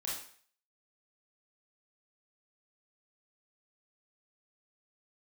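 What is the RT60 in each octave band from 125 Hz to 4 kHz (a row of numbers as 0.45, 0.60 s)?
0.45, 0.45, 0.50, 0.50, 0.55, 0.50 s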